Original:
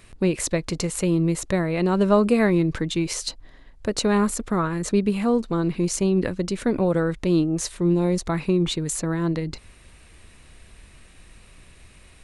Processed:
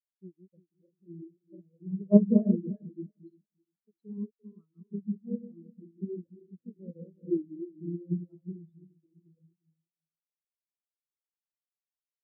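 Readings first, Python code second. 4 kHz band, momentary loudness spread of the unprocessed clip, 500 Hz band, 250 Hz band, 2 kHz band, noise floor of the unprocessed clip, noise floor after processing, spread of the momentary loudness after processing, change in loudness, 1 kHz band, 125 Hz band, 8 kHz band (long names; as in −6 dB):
below −40 dB, 8 LU, −14.0 dB, −8.5 dB, below −40 dB, −50 dBFS, below −85 dBFS, 25 LU, −7.5 dB, below −30 dB, −12.0 dB, below −40 dB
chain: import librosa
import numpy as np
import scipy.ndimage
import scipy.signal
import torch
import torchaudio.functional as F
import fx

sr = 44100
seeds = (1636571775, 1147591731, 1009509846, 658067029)

y = fx.reverse_delay_fb(x, sr, ms=174, feedback_pct=72, wet_db=-2)
y = fx.cheby_harmonics(y, sr, harmonics=(3,), levels_db=(-14,), full_scale_db=-2.5)
y = fx.spectral_expand(y, sr, expansion=4.0)
y = y * librosa.db_to_amplitude(-2.0)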